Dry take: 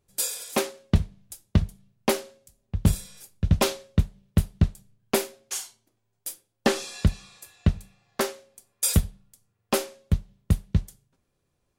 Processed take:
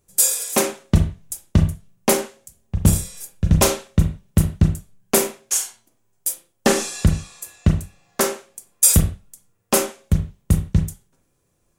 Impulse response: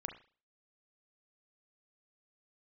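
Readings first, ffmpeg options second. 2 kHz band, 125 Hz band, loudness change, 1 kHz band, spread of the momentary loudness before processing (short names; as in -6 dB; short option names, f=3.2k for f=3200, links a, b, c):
+5.5 dB, +6.0 dB, +7.0 dB, +6.0 dB, 14 LU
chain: -filter_complex "[0:a]highshelf=f=5.4k:t=q:w=1.5:g=6,acontrast=30[a];[1:a]atrim=start_sample=2205,afade=t=out:st=0.23:d=0.01,atrim=end_sample=10584[b];[a][b]afir=irnorm=-1:irlink=0,volume=3dB"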